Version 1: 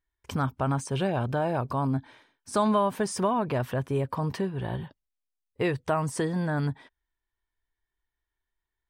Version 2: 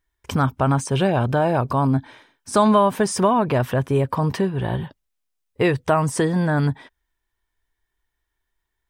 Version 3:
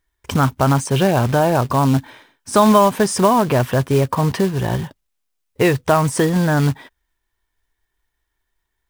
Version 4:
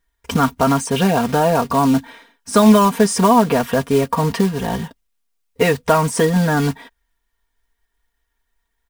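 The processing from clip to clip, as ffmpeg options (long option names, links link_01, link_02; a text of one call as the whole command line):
ffmpeg -i in.wav -af "bandreject=frequency=4400:width=29,volume=8dB" out.wav
ffmpeg -i in.wav -af "acrusher=bits=4:mode=log:mix=0:aa=0.000001,volume=3.5dB" out.wav
ffmpeg -i in.wav -af "aecho=1:1:4.3:0.8,volume=-1dB" out.wav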